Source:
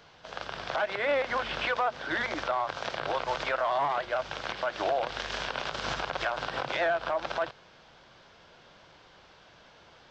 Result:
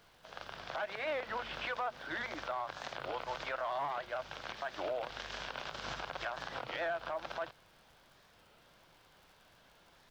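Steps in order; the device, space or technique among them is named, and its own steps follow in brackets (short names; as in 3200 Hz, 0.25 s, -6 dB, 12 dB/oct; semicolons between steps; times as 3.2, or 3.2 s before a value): bell 430 Hz -2 dB; warped LP (record warp 33 1/3 rpm, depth 160 cents; crackle 77/s -45 dBFS; pink noise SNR 31 dB); gain -8.5 dB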